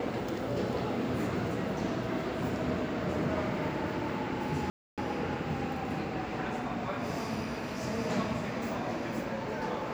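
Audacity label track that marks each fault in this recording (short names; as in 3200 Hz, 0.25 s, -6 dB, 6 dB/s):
4.700000	4.980000	gap 0.277 s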